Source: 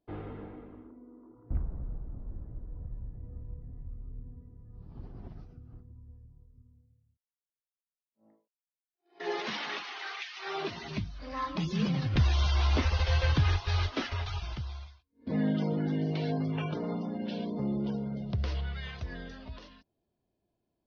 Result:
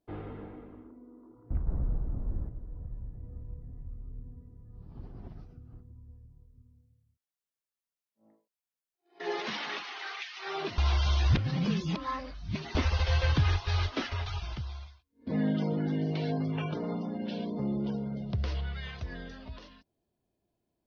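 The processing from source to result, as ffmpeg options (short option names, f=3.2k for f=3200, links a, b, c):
-filter_complex "[0:a]asplit=5[a][b][c][d][e];[a]atrim=end=1.672[f];[b]atrim=start=1.668:end=2.492,asetpts=PTS-STARTPTS,volume=7.5dB[g];[c]atrim=start=2.488:end=10.782[h];[d]atrim=start=10.778:end=12.752,asetpts=PTS-STARTPTS,areverse[i];[e]atrim=start=12.748[j];[f][g]acrossfade=d=0.004:c1=hsin:c2=hsin[k];[k][h]acrossfade=d=0.004:c1=hsin:c2=hsin[l];[l][i]acrossfade=d=0.004:c1=hsin:c2=hsin[m];[m][j]acrossfade=d=0.004:c1=hsin:c2=hsin"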